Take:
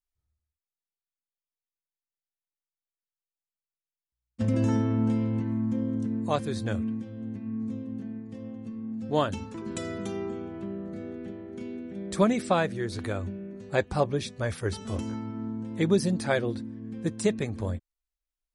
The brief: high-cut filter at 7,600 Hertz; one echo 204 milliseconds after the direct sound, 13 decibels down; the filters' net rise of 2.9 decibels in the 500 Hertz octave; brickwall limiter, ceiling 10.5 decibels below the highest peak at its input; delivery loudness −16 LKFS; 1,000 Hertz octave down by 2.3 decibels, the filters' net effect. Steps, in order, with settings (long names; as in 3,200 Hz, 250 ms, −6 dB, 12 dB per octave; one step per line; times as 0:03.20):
low-pass filter 7,600 Hz
parametric band 500 Hz +5 dB
parametric band 1,000 Hz −5.5 dB
brickwall limiter −19.5 dBFS
single-tap delay 204 ms −13 dB
level +15.5 dB